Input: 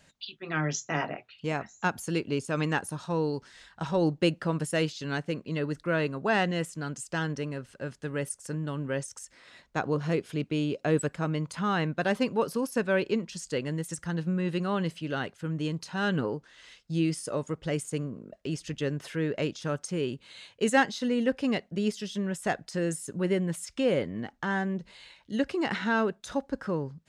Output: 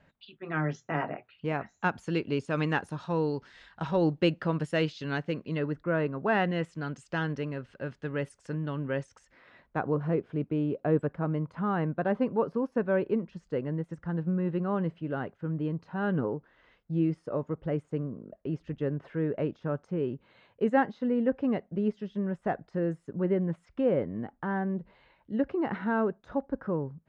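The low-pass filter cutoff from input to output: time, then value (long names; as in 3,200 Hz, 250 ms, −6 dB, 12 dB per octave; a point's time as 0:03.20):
0:01.12 1,800 Hz
0:02.23 3,600 Hz
0:05.49 3,600 Hz
0:05.84 1,400 Hz
0:06.80 3,100 Hz
0:08.79 3,100 Hz
0:10.14 1,200 Hz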